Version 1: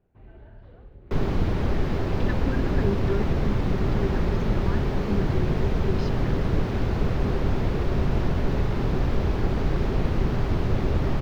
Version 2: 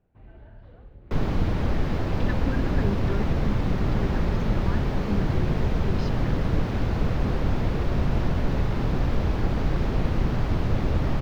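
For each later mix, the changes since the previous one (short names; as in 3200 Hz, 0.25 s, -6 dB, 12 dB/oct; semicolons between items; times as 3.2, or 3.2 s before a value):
master: add bell 390 Hz -6.5 dB 0.2 oct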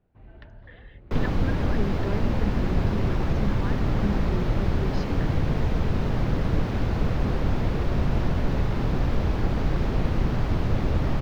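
speech: entry -1.05 s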